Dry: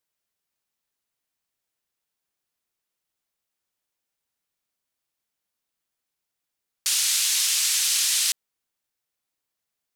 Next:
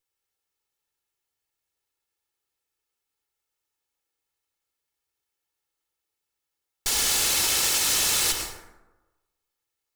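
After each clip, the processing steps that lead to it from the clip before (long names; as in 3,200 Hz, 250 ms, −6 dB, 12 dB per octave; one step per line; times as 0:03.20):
lower of the sound and its delayed copy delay 2.3 ms
dense smooth reverb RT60 1.1 s, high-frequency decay 0.45×, pre-delay 85 ms, DRR 3 dB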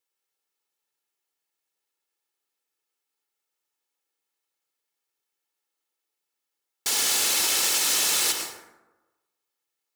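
high-pass filter 210 Hz 12 dB per octave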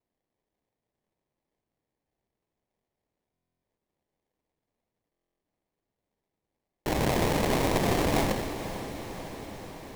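sample-rate reduction 1,400 Hz, jitter 20%
feedback delay with all-pass diffusion 499 ms, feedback 69%, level −11.5 dB
buffer that repeats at 0:03.32/0:05.11, samples 1,024, times 12
level −2.5 dB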